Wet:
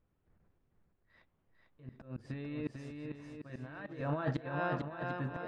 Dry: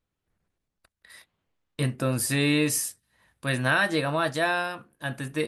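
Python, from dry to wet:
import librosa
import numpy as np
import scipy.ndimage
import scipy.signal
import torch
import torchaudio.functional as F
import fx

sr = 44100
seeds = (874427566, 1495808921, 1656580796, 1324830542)

y = fx.over_compress(x, sr, threshold_db=-28.0, ratio=-0.5)
y = fx.auto_swell(y, sr, attack_ms=635.0)
y = fx.spacing_loss(y, sr, db_at_10k=43)
y = fx.echo_swing(y, sr, ms=746, ratio=1.5, feedback_pct=33, wet_db=-4.5)
y = F.gain(torch.from_numpy(y), 3.5).numpy()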